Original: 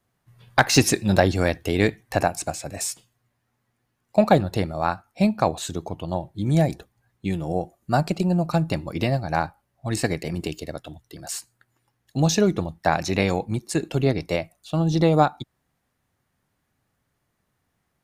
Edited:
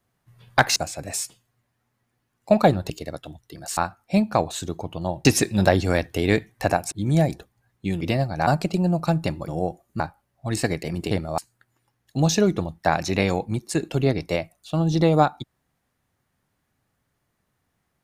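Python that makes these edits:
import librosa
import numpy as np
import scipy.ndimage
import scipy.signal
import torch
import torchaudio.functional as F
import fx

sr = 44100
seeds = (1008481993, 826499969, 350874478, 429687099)

y = fx.edit(x, sr, fx.move(start_s=0.76, length_s=1.67, to_s=6.32),
    fx.swap(start_s=4.57, length_s=0.27, other_s=10.51, other_length_s=0.87),
    fx.swap(start_s=7.41, length_s=0.52, other_s=8.94, other_length_s=0.46), tone=tone)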